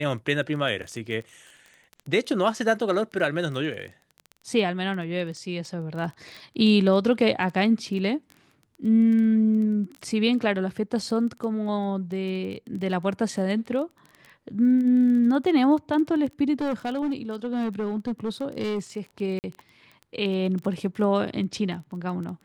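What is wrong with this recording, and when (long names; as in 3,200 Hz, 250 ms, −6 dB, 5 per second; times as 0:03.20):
surface crackle 15 per second −32 dBFS
0:16.61–0:18.79: clipping −23 dBFS
0:19.39–0:19.44: drop-out 49 ms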